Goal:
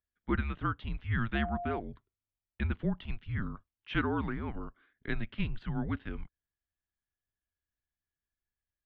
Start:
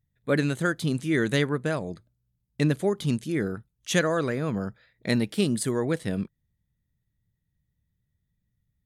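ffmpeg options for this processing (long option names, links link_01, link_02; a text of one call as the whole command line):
ffmpeg -i in.wav -filter_complex "[0:a]highpass=frequency=210:width_type=q:width=0.5412,highpass=frequency=210:width_type=q:width=1.307,lowpass=frequency=3300:width_type=q:width=0.5176,lowpass=frequency=3300:width_type=q:width=0.7071,lowpass=frequency=3300:width_type=q:width=1.932,afreqshift=-220,asettb=1/sr,asplit=3[link_01][link_02][link_03];[link_01]atrim=end=1.354[link_04];[link_02]atrim=start=1.35:end=1.8,asetpts=PTS-STARTPTS,afade=type=in:duration=0.004:curve=qsin,afade=type=out:start_time=0.446:duration=0.004:curve=qsin,aeval=exprs='val(0)+0.0316*sin(2*PI*700*n/s)':channel_layout=same[link_05];[link_03]atrim=start=1.796[link_06];[link_04][link_05]acrossfade=duration=0.004:curve1=hsin:curve2=qsin[link_07];[link_07][link_06]acrossfade=duration=0.004:curve1=qsin:curve2=hsin,volume=-6dB" out.wav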